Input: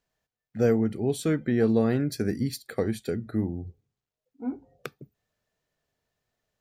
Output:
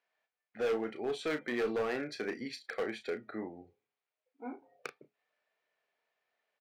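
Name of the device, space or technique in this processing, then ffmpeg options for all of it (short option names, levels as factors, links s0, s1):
megaphone: -filter_complex "[0:a]highpass=590,lowpass=3100,equalizer=f=2300:t=o:w=0.29:g=6,asoftclip=type=hard:threshold=0.0316,asplit=2[s0][s1];[s1]adelay=33,volume=0.355[s2];[s0][s2]amix=inputs=2:normalize=0,volume=1.12"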